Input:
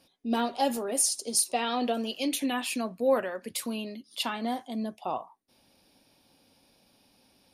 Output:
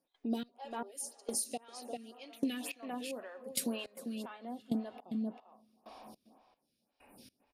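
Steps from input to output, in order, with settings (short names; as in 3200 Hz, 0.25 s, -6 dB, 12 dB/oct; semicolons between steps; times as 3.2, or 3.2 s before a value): reverb RT60 3.1 s, pre-delay 0.227 s, DRR 16 dB; step gate ".xx....." 105 bpm -24 dB; 0.58–1.02 steep high-pass 300 Hz 96 dB/oct; 2.64–3.6 harmonic-percussive split harmonic +5 dB; 4.3–5.05 low shelf 480 Hz +9.5 dB; 6.34–7.16 spectral repair 2900–7300 Hz before; outdoor echo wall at 68 m, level -13 dB; compressor 6:1, threshold -40 dBFS, peak gain reduction 18 dB; photocell phaser 1.9 Hz; gain +8.5 dB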